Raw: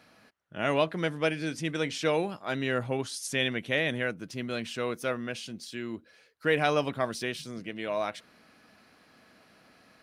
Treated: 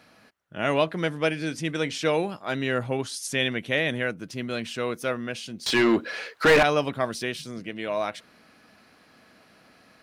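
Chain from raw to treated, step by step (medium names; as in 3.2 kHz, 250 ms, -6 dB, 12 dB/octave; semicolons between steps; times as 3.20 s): 5.66–6.63 s: overdrive pedal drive 32 dB, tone 2.2 kHz, clips at -12 dBFS; trim +3 dB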